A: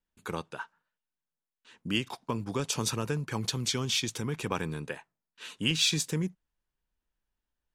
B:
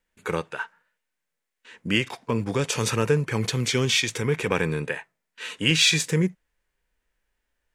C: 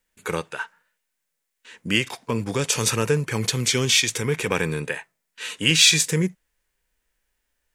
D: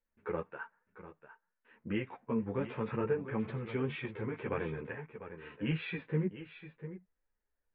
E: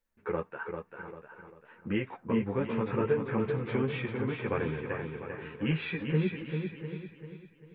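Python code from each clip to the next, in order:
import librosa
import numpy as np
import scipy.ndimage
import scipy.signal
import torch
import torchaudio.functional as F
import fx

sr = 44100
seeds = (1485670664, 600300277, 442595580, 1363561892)

y1 = fx.graphic_eq_10(x, sr, hz=(500, 2000, 8000), db=(7, 11, 4))
y1 = fx.hpss(y1, sr, part='harmonic', gain_db=9)
y1 = y1 * 10.0 ** (-1.0 / 20.0)
y2 = fx.high_shelf(y1, sr, hz=4400.0, db=9.5)
y3 = scipy.ndimage.gaussian_filter1d(y2, 4.8, mode='constant')
y3 = y3 + 10.0 ** (-12.0 / 20.0) * np.pad(y3, (int(698 * sr / 1000.0), 0))[:len(y3)]
y3 = fx.ensemble(y3, sr)
y3 = y3 * 10.0 ** (-6.0 / 20.0)
y4 = fx.echo_feedback(y3, sr, ms=394, feedback_pct=38, wet_db=-6)
y4 = y4 * 10.0 ** (4.0 / 20.0)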